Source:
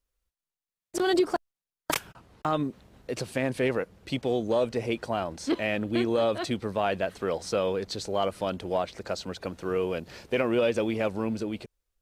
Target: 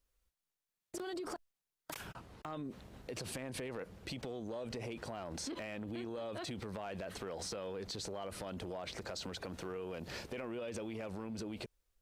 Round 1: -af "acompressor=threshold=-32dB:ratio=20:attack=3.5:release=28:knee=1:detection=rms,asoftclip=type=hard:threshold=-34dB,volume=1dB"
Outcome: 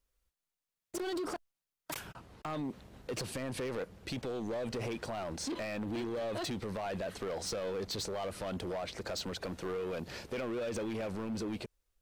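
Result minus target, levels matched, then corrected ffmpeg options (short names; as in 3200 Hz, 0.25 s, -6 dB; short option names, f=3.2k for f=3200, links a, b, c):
compressor: peak gain reduction -7.5 dB
-af "acompressor=threshold=-40dB:ratio=20:attack=3.5:release=28:knee=1:detection=rms,asoftclip=type=hard:threshold=-34dB,volume=1dB"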